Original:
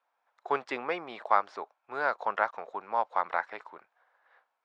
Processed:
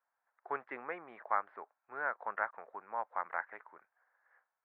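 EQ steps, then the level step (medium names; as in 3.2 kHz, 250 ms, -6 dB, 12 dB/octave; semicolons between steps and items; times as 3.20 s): four-pole ladder low-pass 2.1 kHz, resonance 50%; distance through air 150 m; -1.0 dB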